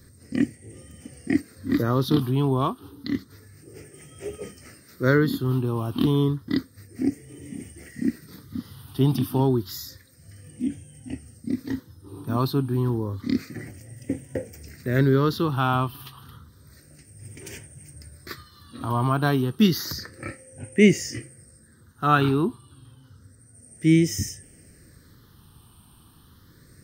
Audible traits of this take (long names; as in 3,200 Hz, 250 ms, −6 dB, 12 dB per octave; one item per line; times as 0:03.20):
phaser sweep stages 6, 0.3 Hz, lowest notch 530–1,100 Hz